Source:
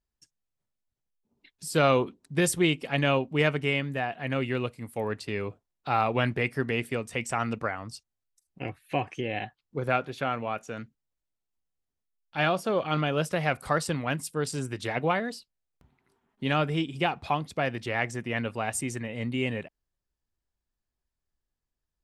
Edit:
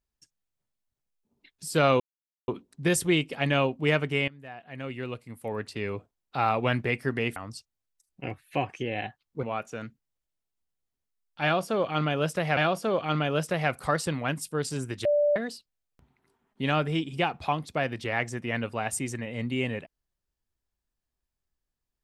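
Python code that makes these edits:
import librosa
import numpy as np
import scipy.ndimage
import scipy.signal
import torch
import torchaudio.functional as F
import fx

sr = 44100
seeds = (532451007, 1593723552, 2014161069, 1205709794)

y = fx.edit(x, sr, fx.insert_silence(at_s=2.0, length_s=0.48),
    fx.fade_in_from(start_s=3.8, length_s=1.67, floor_db=-19.0),
    fx.cut(start_s=6.88, length_s=0.86),
    fx.cut(start_s=9.81, length_s=0.58),
    fx.repeat(start_s=12.39, length_s=1.14, count=2),
    fx.bleep(start_s=14.87, length_s=0.31, hz=587.0, db=-19.5), tone=tone)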